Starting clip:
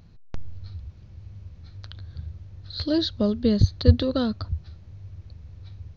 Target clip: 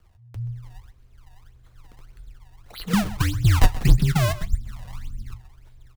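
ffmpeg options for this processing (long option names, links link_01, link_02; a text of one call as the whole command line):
ffmpeg -i in.wav -filter_complex "[0:a]asettb=1/sr,asplit=3[link_01][link_02][link_03];[link_01]atrim=end=2.934[link_04];[link_02]atrim=start=2.93:end=5.34,asetpts=PTS-STARTPTS,afade=type=in:duration=0.004:curve=qsin,afade=type=out:start_time=2.406:duration=0.004:curve=qsin,lowshelf=frequency=480:width_type=q:width=3:gain=14[link_05];[link_03]atrim=start=5.336[link_06];[link_04][link_05]acrossfade=duration=0.004:curve1=hsin:curve2=qsin[link_07];[link_07][link_06]acrossfade=duration=0.004:curve1=qsin:curve2=hsin,acrossover=split=160|3000[link_08][link_09][link_10];[link_09]acompressor=threshold=-17dB:ratio=10[link_11];[link_08][link_11][link_10]amix=inputs=3:normalize=0,acrusher=samples=26:mix=1:aa=0.000001:lfo=1:lforange=41.6:lforate=1.7,asoftclip=type=hard:threshold=-2.5dB,flanger=delay=6.6:depth=1.4:regen=-57:speed=0.67:shape=sinusoidal,afreqshift=-120,asplit=2[link_12][link_13];[link_13]adelay=128.3,volume=-16dB,highshelf=frequency=4000:gain=-2.89[link_14];[link_12][link_14]amix=inputs=2:normalize=0,volume=-1dB" out.wav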